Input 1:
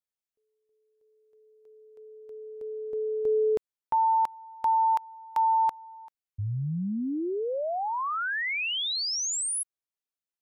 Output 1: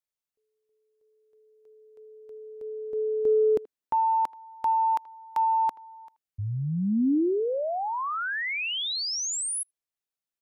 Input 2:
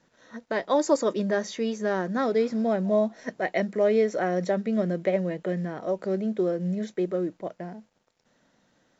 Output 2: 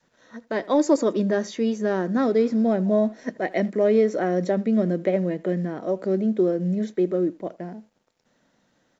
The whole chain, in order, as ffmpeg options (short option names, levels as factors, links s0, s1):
-filter_complex "[0:a]asplit=2[s0][s1];[s1]adelay=80,highpass=300,lowpass=3400,asoftclip=type=hard:threshold=0.112,volume=0.0891[s2];[s0][s2]amix=inputs=2:normalize=0,acontrast=55,adynamicequalizer=threshold=0.02:dfrequency=280:dqfactor=1.1:tfrequency=280:tqfactor=1.1:attack=5:release=100:ratio=0.375:range=4:mode=boostabove:tftype=bell,volume=0.473"